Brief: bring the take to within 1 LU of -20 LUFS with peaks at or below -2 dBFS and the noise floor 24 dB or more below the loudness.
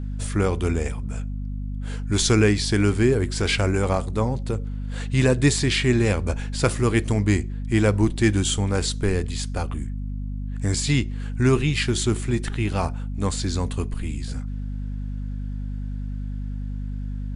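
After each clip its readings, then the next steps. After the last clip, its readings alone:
hum 50 Hz; harmonics up to 250 Hz; hum level -26 dBFS; loudness -24.0 LUFS; peak -5.0 dBFS; loudness target -20.0 LUFS
-> notches 50/100/150/200/250 Hz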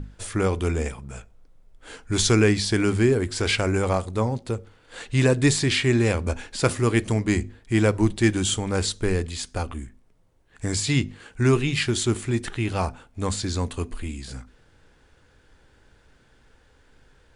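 hum none; loudness -23.5 LUFS; peak -6.5 dBFS; loudness target -20.0 LUFS
-> gain +3.5 dB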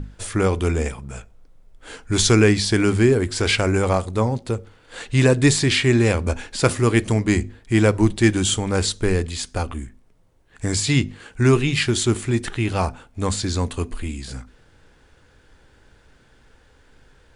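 loudness -20.0 LUFS; peak -3.0 dBFS; noise floor -55 dBFS

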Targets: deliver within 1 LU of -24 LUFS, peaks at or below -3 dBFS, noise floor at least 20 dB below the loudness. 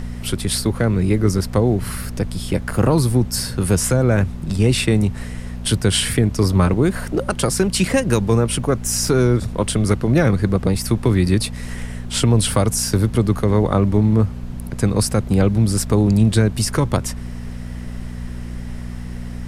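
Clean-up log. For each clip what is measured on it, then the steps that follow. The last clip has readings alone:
hum 60 Hz; harmonics up to 240 Hz; hum level -27 dBFS; noise floor -30 dBFS; noise floor target -39 dBFS; loudness -18.5 LUFS; peak -3.5 dBFS; loudness target -24.0 LUFS
-> de-hum 60 Hz, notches 4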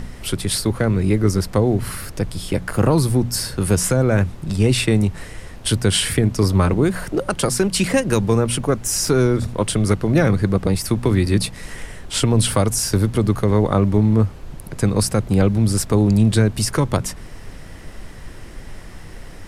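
hum none; noise floor -36 dBFS; noise floor target -39 dBFS
-> noise print and reduce 6 dB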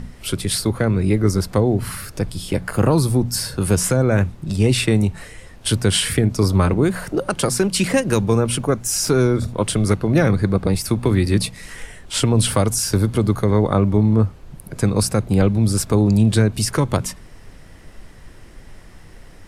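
noise floor -42 dBFS; loudness -19.0 LUFS; peak -3.5 dBFS; loudness target -24.0 LUFS
-> gain -5 dB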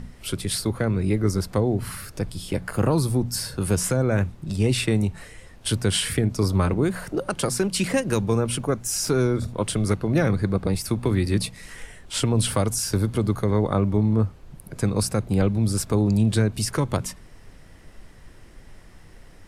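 loudness -24.0 LUFS; peak -8.5 dBFS; noise floor -47 dBFS

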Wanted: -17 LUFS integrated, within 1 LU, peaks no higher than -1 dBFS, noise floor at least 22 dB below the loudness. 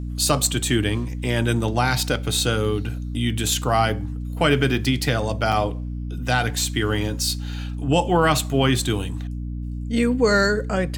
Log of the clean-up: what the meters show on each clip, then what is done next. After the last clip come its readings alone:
dropouts 1; longest dropout 6.6 ms; hum 60 Hz; harmonics up to 300 Hz; hum level -26 dBFS; loudness -22.0 LUFS; peak -3.5 dBFS; loudness target -17.0 LUFS
-> interpolate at 5.52, 6.6 ms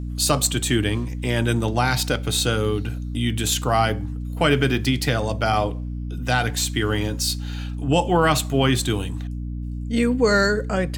dropouts 0; hum 60 Hz; harmonics up to 300 Hz; hum level -26 dBFS
-> notches 60/120/180/240/300 Hz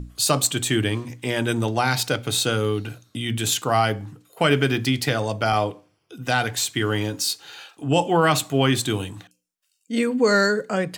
hum none; loudness -22.0 LUFS; peak -3.5 dBFS; loudness target -17.0 LUFS
-> gain +5 dB; limiter -1 dBFS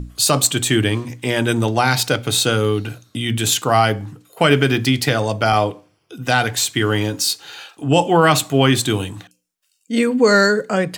loudness -17.5 LUFS; peak -1.0 dBFS; noise floor -65 dBFS

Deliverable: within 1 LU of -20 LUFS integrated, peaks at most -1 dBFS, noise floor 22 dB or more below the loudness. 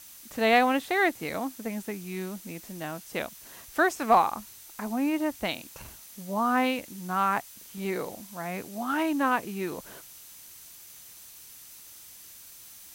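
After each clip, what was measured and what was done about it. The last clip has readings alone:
steady tone 6100 Hz; tone level -59 dBFS; noise floor -49 dBFS; noise floor target -51 dBFS; loudness -28.5 LUFS; peak -10.0 dBFS; loudness target -20.0 LUFS
-> notch 6100 Hz, Q 30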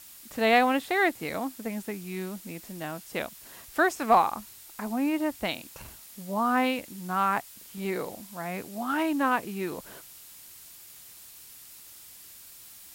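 steady tone none; noise floor -49 dBFS; noise floor target -51 dBFS
-> noise print and reduce 6 dB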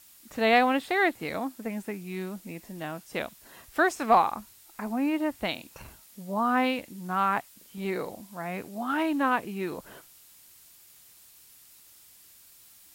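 noise floor -55 dBFS; loudness -28.5 LUFS; peak -10.0 dBFS; loudness target -20.0 LUFS
-> gain +8.5 dB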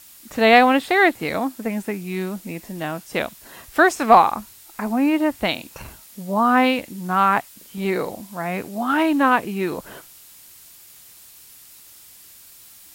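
loudness -20.0 LUFS; peak -1.5 dBFS; noise floor -47 dBFS

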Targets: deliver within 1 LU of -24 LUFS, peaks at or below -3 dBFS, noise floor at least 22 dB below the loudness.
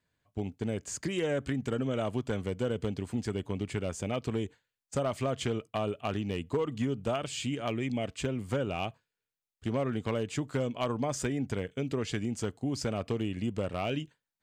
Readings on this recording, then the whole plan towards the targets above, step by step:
clipped 0.5%; flat tops at -22.5 dBFS; loudness -33.5 LUFS; peak -22.5 dBFS; loudness target -24.0 LUFS
-> clip repair -22.5 dBFS; gain +9.5 dB

